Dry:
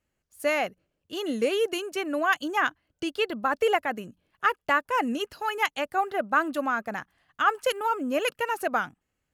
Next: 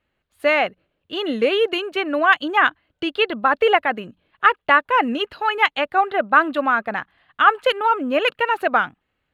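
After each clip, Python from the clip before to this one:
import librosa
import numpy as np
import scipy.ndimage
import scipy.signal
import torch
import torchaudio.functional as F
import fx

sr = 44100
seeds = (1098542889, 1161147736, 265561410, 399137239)

y = fx.curve_eq(x, sr, hz=(160.0, 1200.0, 3900.0, 5600.0), db=(0, 5, 5, -14))
y = y * librosa.db_to_amplitude(4.0)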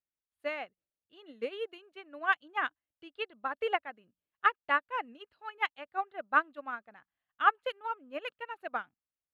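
y = fx.upward_expand(x, sr, threshold_db=-24.0, expansion=2.5)
y = y * librosa.db_to_amplitude(-9.0)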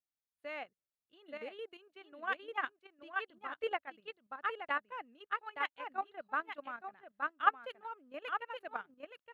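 y = x + 10.0 ** (-5.5 / 20.0) * np.pad(x, (int(872 * sr / 1000.0), 0))[:len(x)]
y = fx.level_steps(y, sr, step_db=10)
y = y * librosa.db_to_amplitude(-2.0)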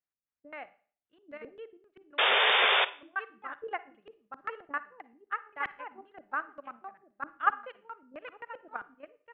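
y = fx.filter_lfo_lowpass(x, sr, shape='square', hz=3.8, low_hz=310.0, high_hz=1900.0, q=1.3)
y = fx.spec_paint(y, sr, seeds[0], shape='noise', start_s=2.18, length_s=0.67, low_hz=380.0, high_hz=3700.0, level_db=-24.0)
y = fx.rev_schroeder(y, sr, rt60_s=0.43, comb_ms=38, drr_db=15.5)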